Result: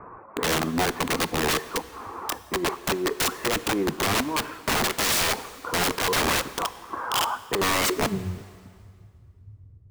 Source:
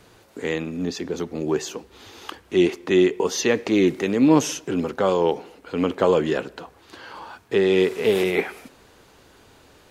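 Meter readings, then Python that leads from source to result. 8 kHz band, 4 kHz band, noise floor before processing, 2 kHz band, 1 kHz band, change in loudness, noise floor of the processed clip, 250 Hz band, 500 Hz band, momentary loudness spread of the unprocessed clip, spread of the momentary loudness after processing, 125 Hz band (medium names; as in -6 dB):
+5.5 dB, +6.0 dB, -54 dBFS, +3.5 dB, +4.0 dB, -3.5 dB, -51 dBFS, -8.5 dB, -8.5 dB, 19 LU, 10 LU, -2.0 dB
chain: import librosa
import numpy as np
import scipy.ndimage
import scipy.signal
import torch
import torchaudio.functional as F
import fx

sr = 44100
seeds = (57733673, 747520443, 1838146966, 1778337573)

y = fx.dereverb_blind(x, sr, rt60_s=0.52)
y = scipy.signal.sosfilt(scipy.signal.butter(16, 2600.0, 'lowpass', fs=sr, output='sos'), y)
y = fx.low_shelf(y, sr, hz=150.0, db=-2.0)
y = fx.over_compress(y, sr, threshold_db=-22.0, ratio=-0.5)
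y = fx.cheby_harmonics(y, sr, harmonics=(4,), levels_db=(-33,), full_scale_db=-8.0)
y = fx.filter_sweep_lowpass(y, sr, from_hz=1100.0, to_hz=100.0, start_s=7.63, end_s=8.25, q=6.1)
y = (np.mod(10.0 ** (20.5 / 20.0) * y + 1.0, 2.0) - 1.0) / 10.0 ** (20.5 / 20.0)
y = fx.rev_plate(y, sr, seeds[0], rt60_s=2.2, hf_ratio=0.9, predelay_ms=0, drr_db=14.5)
y = y * 10.0 ** (2.5 / 20.0)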